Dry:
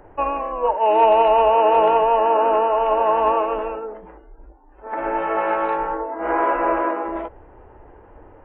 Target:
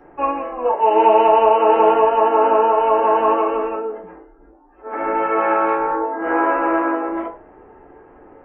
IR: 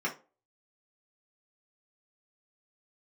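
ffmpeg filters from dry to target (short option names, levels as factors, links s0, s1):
-filter_complex "[0:a]bandreject=f=104.3:t=h:w=4,bandreject=f=208.6:t=h:w=4,bandreject=f=312.9:t=h:w=4,bandreject=f=417.2:t=h:w=4,bandreject=f=521.5:t=h:w=4,bandreject=f=625.8:t=h:w=4,bandreject=f=730.1:t=h:w=4,bandreject=f=834.4:t=h:w=4,bandreject=f=938.7:t=h:w=4,bandreject=f=1043:t=h:w=4,bandreject=f=1147.3:t=h:w=4,bandreject=f=1251.6:t=h:w=4,bandreject=f=1355.9:t=h:w=4,bandreject=f=1460.2:t=h:w=4,bandreject=f=1564.5:t=h:w=4,bandreject=f=1668.8:t=h:w=4,bandreject=f=1773.1:t=h:w=4,bandreject=f=1877.4:t=h:w=4,bandreject=f=1981.7:t=h:w=4,bandreject=f=2086:t=h:w=4,bandreject=f=2190.3:t=h:w=4,bandreject=f=2294.6:t=h:w=4,bandreject=f=2398.9:t=h:w=4,bandreject=f=2503.2:t=h:w=4,bandreject=f=2607.5:t=h:w=4,bandreject=f=2711.8:t=h:w=4,bandreject=f=2816.1:t=h:w=4[s0];[1:a]atrim=start_sample=2205[s1];[s0][s1]afir=irnorm=-1:irlink=0,volume=0.596"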